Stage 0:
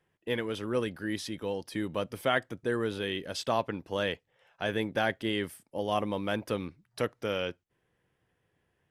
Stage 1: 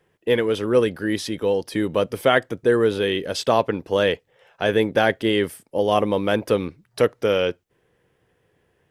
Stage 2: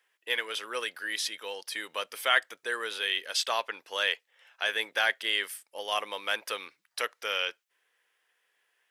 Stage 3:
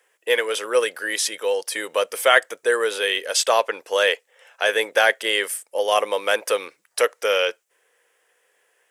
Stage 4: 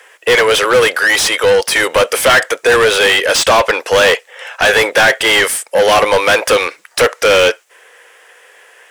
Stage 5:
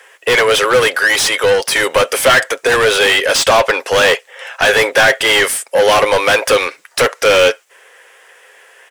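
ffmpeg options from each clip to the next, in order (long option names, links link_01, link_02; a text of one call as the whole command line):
ffmpeg -i in.wav -af "equalizer=frequency=450:width=2.1:gain=6,volume=8.5dB" out.wav
ffmpeg -i in.wav -af "highpass=1500" out.wav
ffmpeg -i in.wav -af "equalizer=frequency=500:width_type=o:width=1:gain=11,equalizer=frequency=4000:width_type=o:width=1:gain=-5,equalizer=frequency=8000:width_type=o:width=1:gain=8,volume=7.5dB" out.wav
ffmpeg -i in.wav -filter_complex "[0:a]asplit=2[link_01][link_02];[link_02]highpass=frequency=720:poles=1,volume=30dB,asoftclip=type=tanh:threshold=-1.5dB[link_03];[link_01][link_03]amix=inputs=2:normalize=0,lowpass=frequency=3800:poles=1,volume=-6dB" out.wav
ffmpeg -i in.wav -af "aecho=1:1:7.4:0.31,volume=-1dB" out.wav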